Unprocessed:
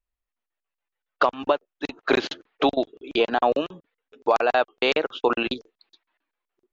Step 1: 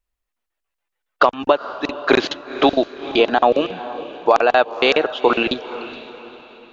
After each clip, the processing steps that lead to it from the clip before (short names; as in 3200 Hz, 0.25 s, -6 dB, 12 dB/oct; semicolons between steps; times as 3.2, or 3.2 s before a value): diffused feedback echo 0.472 s, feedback 42%, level -14 dB; gain +6 dB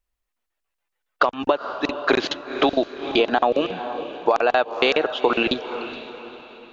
compressor, threshold -14 dBFS, peak gain reduction 6.5 dB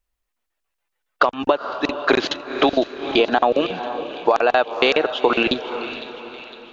thin delay 0.506 s, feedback 57%, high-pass 1800 Hz, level -14.5 dB; gain +2 dB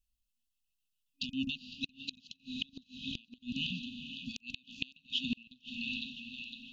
FFT band-reject 270–2500 Hz; flipped gate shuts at -16 dBFS, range -30 dB; gain -4.5 dB